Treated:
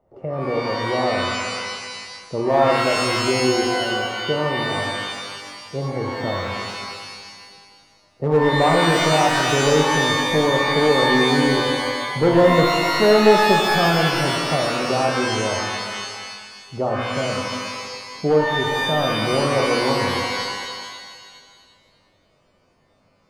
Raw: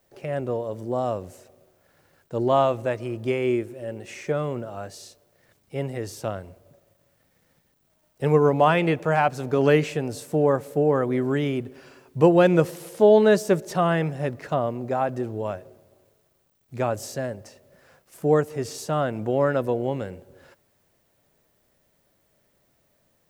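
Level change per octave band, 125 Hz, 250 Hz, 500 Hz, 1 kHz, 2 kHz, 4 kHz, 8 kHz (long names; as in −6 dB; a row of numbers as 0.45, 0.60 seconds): +2.5, +3.5, +3.0, +7.5, +11.5, +18.5, +12.0 decibels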